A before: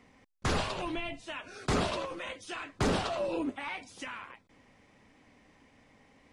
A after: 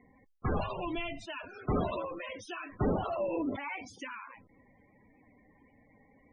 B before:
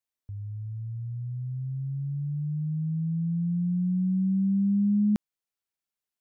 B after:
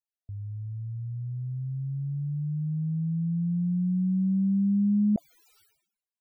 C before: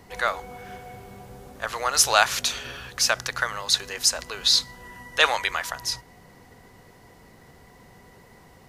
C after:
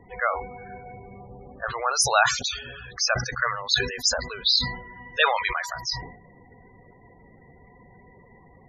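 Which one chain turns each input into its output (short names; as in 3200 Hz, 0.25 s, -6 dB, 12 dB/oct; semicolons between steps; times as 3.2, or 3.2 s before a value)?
loudest bins only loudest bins 32; sustainer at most 85 dB/s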